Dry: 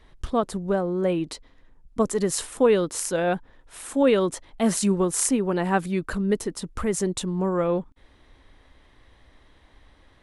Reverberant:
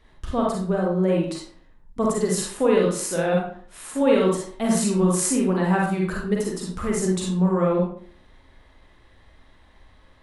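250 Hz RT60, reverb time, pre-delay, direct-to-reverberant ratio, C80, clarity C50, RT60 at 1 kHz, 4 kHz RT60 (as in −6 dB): 0.55 s, 0.50 s, 37 ms, −3.0 dB, 7.0 dB, 1.0 dB, 0.50 s, 0.35 s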